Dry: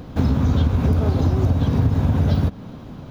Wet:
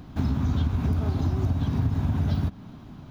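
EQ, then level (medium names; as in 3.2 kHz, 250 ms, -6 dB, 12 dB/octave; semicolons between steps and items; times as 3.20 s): peaking EQ 500 Hz -12.5 dB 0.36 oct; -6.5 dB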